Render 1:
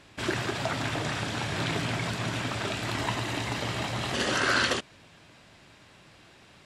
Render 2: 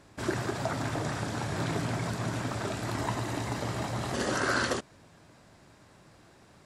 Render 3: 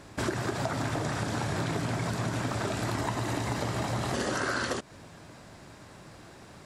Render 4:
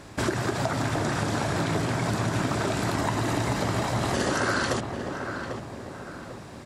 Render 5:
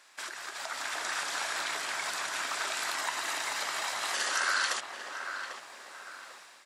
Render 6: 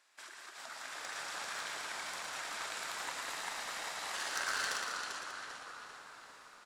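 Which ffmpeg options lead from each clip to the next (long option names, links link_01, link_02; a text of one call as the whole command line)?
ffmpeg -i in.wav -af "equalizer=frequency=2900:width_type=o:width=1.3:gain=-11" out.wav
ffmpeg -i in.wav -af "acompressor=threshold=-35dB:ratio=6,volume=7.5dB" out.wav
ffmpeg -i in.wav -filter_complex "[0:a]asplit=2[link_01][link_02];[link_02]adelay=796,lowpass=frequency=1700:poles=1,volume=-6dB,asplit=2[link_03][link_04];[link_04]adelay=796,lowpass=frequency=1700:poles=1,volume=0.47,asplit=2[link_05][link_06];[link_06]adelay=796,lowpass=frequency=1700:poles=1,volume=0.47,asplit=2[link_07][link_08];[link_08]adelay=796,lowpass=frequency=1700:poles=1,volume=0.47,asplit=2[link_09][link_10];[link_10]adelay=796,lowpass=frequency=1700:poles=1,volume=0.47,asplit=2[link_11][link_12];[link_12]adelay=796,lowpass=frequency=1700:poles=1,volume=0.47[link_13];[link_01][link_03][link_05][link_07][link_09][link_11][link_13]amix=inputs=7:normalize=0,volume=4dB" out.wav
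ffmpeg -i in.wav -af "highpass=1400,dynaudnorm=framelen=490:gausssize=3:maxgain=8dB,volume=-6.5dB" out.wav
ffmpeg -i in.wav -filter_complex "[0:a]asplit=2[link_01][link_02];[link_02]asplit=5[link_03][link_04][link_05][link_06][link_07];[link_03]adelay=393,afreqshift=-110,volume=-3.5dB[link_08];[link_04]adelay=786,afreqshift=-220,volume=-11.2dB[link_09];[link_05]adelay=1179,afreqshift=-330,volume=-19dB[link_10];[link_06]adelay=1572,afreqshift=-440,volume=-26.7dB[link_11];[link_07]adelay=1965,afreqshift=-550,volume=-34.5dB[link_12];[link_08][link_09][link_10][link_11][link_12]amix=inputs=5:normalize=0[link_13];[link_01][link_13]amix=inputs=2:normalize=0,aeval=exprs='0.211*(cos(1*acos(clip(val(0)/0.211,-1,1)))-cos(1*PI/2))+0.0473*(cos(3*acos(clip(val(0)/0.211,-1,1)))-cos(3*PI/2))':channel_layout=same,asplit=2[link_14][link_15];[link_15]aecho=0:1:112|196:0.473|0.398[link_16];[link_14][link_16]amix=inputs=2:normalize=0,volume=-2dB" out.wav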